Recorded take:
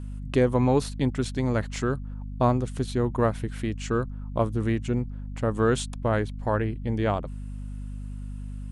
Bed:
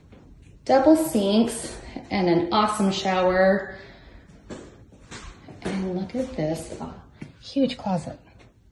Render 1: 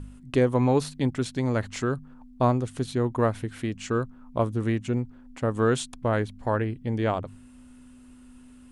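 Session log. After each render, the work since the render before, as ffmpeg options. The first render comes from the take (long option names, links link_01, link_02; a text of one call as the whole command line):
ffmpeg -i in.wav -af "bandreject=frequency=50:width_type=h:width=4,bandreject=frequency=100:width_type=h:width=4,bandreject=frequency=150:width_type=h:width=4,bandreject=frequency=200:width_type=h:width=4" out.wav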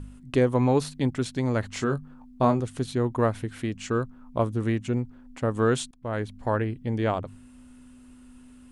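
ffmpeg -i in.wav -filter_complex "[0:a]asettb=1/sr,asplit=3[link_01][link_02][link_03];[link_01]atrim=end=1.734[link_04];[link_02]atrim=start=1.73:end=2.6,asetpts=PTS-STARTPTS,afade=type=in:duration=0.004:curve=qsin,afade=type=out:start_time=0.866:duration=0.004:curve=qsin,asplit=2[link_05][link_06];[link_06]adelay=21,volume=-7dB[link_07];[link_05][link_07]amix=inputs=2:normalize=0,atrim=end_sample=38367[link_08];[link_03]atrim=start=2.596[link_09];[link_04][link_08]acrossfade=duration=0.004:curve1=hsin:curve2=qsin[link_10];[link_10][link_09]acrossfade=duration=0.004:curve1=qsin:curve2=hsin,asplit=2[link_11][link_12];[link_11]atrim=end=5.91,asetpts=PTS-STARTPTS,afade=type=out:start_time=5.906:duration=0.004:curve=hsin:silence=0.0841395[link_13];[link_12]atrim=start=5.91,asetpts=PTS-STARTPTS,afade=type=in:duration=0.44:silence=0.0841395[link_14];[link_13][link_14]concat=n=2:v=0:a=1" out.wav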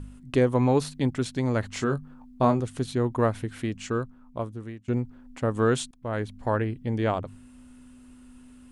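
ffmpeg -i in.wav -filter_complex "[0:a]asplit=2[link_01][link_02];[link_01]atrim=end=4.88,asetpts=PTS-STARTPTS,afade=type=out:start_time=3.72:duration=1.16:silence=0.0841395[link_03];[link_02]atrim=start=4.88,asetpts=PTS-STARTPTS,afade=type=in:duration=0.004:curve=hsin:silence=0.0841395[link_04];[link_03][link_04]concat=n=2:v=0:a=1" out.wav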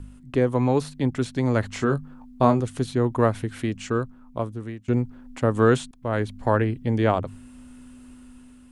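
ffmpeg -i in.wav -filter_complex "[0:a]acrossover=split=340|2300[link_01][link_02][link_03];[link_03]alimiter=level_in=7.5dB:limit=-24dB:level=0:latency=1:release=178,volume=-7.5dB[link_04];[link_01][link_02][link_04]amix=inputs=3:normalize=0,dynaudnorm=framelen=810:gausssize=3:maxgain=5dB" out.wav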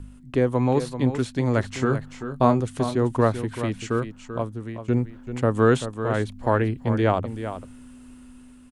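ffmpeg -i in.wav -af "aecho=1:1:387:0.299" out.wav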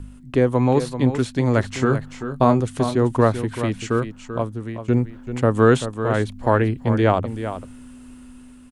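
ffmpeg -i in.wav -af "volume=3.5dB,alimiter=limit=-2dB:level=0:latency=1" out.wav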